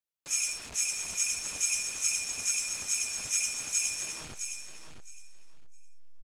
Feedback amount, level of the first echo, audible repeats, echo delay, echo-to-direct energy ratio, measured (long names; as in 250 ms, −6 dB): 18%, −8.0 dB, 2, 663 ms, −8.0 dB